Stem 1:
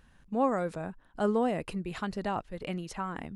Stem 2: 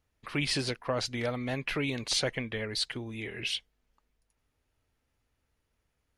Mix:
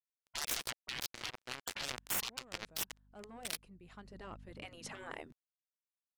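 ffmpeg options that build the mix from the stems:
ffmpeg -i stem1.wav -i stem2.wav -filter_complex "[0:a]aeval=exprs='val(0)+0.00794*(sin(2*PI*50*n/s)+sin(2*PI*2*50*n/s)/2+sin(2*PI*3*50*n/s)/3+sin(2*PI*4*50*n/s)/4+sin(2*PI*5*50*n/s)/5)':channel_layout=same,asoftclip=type=tanh:threshold=-23dB,adelay=1950,volume=0.5dB[link_01];[1:a]lowshelf=frequency=91:gain=-4,acrusher=bits=3:mix=0:aa=0.5,volume=2.5dB,asplit=2[link_02][link_03];[link_03]apad=whole_len=233955[link_04];[link_01][link_04]sidechaincompress=threshold=-50dB:ratio=16:attack=10:release=881[link_05];[link_05][link_02]amix=inputs=2:normalize=0,afftfilt=real='re*lt(hypot(re,im),0.0355)':imag='im*lt(hypot(re,im),0.0355)':win_size=1024:overlap=0.75" out.wav

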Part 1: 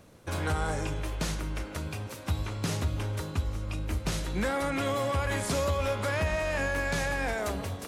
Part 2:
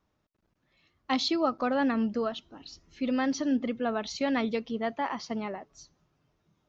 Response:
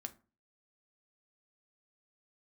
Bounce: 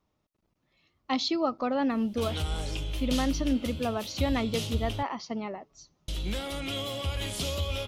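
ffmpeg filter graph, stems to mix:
-filter_complex "[0:a]equalizer=frequency=125:width_type=o:width=1:gain=-8,equalizer=frequency=250:width_type=o:width=1:gain=-5,equalizer=frequency=500:width_type=o:width=1:gain=-6,equalizer=frequency=1000:width_type=o:width=1:gain=-11,equalizer=frequency=2000:width_type=o:width=1:gain=-8,equalizer=frequency=8000:width_type=o:width=1:gain=-6,equalizer=frequency=3100:width=2.6:gain=10.5,adelay=1900,volume=3dB,asplit=3[link_01][link_02][link_03];[link_01]atrim=end=5.03,asetpts=PTS-STARTPTS,afade=type=out:start_time=5.026:duration=0.004:curve=hsin[link_04];[link_02]atrim=start=5.03:end=6.08,asetpts=PTS-STARTPTS,volume=0[link_05];[link_03]atrim=start=6.08,asetpts=PTS-STARTPTS,afade=type=in:duration=0.004:curve=hsin[link_06];[link_04][link_05][link_06]concat=n=3:v=0:a=1[link_07];[1:a]volume=-0.5dB[link_08];[link_07][link_08]amix=inputs=2:normalize=0,equalizer=frequency=1600:width_type=o:width=0.31:gain=-7.5"

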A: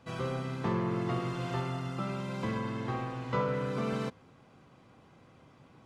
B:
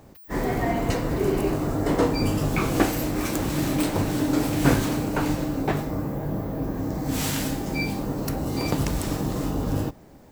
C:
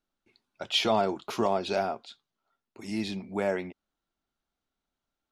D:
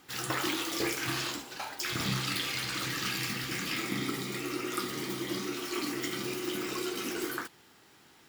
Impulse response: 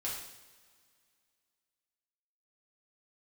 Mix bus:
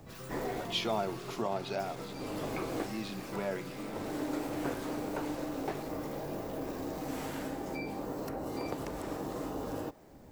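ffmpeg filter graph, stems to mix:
-filter_complex "[0:a]volume=-13.5dB[link_01];[1:a]acrossover=split=350|790|2200[link_02][link_03][link_04][link_05];[link_02]acompressor=threshold=-48dB:ratio=4[link_06];[link_03]acompressor=threshold=-32dB:ratio=4[link_07];[link_04]acompressor=threshold=-41dB:ratio=4[link_08];[link_05]acompressor=threshold=-47dB:ratio=4[link_09];[link_06][link_07][link_08][link_09]amix=inputs=4:normalize=0,lowshelf=frequency=470:gain=5.5,volume=-6dB[link_10];[2:a]volume=-7.5dB,asplit=2[link_11][link_12];[3:a]bandreject=frequency=3100:width=12,aeval=exprs='(tanh(126*val(0)+0.65)-tanh(0.65))/126':channel_layout=same,volume=-8dB[link_13];[link_12]apad=whole_len=454866[link_14];[link_10][link_14]sidechaincompress=threshold=-45dB:ratio=8:attack=5.7:release=510[link_15];[link_01][link_15][link_11][link_13]amix=inputs=4:normalize=0"

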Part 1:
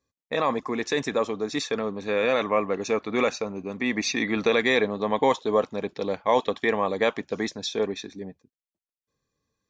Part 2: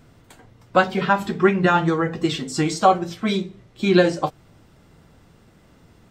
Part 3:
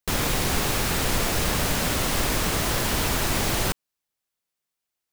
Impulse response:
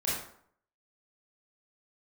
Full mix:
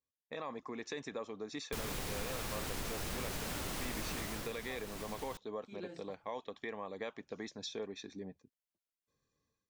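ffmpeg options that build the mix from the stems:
-filter_complex "[0:a]dynaudnorm=framelen=140:gausssize=5:maxgain=15dB,volume=-18.5dB,asplit=2[link_01][link_02];[1:a]adelay=1850,volume=-17dB[link_03];[2:a]adelay=1650,volume=-4dB,afade=type=out:start_time=4.17:duration=0.37:silence=0.266073[link_04];[link_02]apad=whole_len=350942[link_05];[link_03][link_05]sidechaincompress=threshold=-41dB:ratio=4:attack=48:release=1180[link_06];[link_01][link_06][link_04]amix=inputs=3:normalize=0,acompressor=threshold=-43dB:ratio=2.5"

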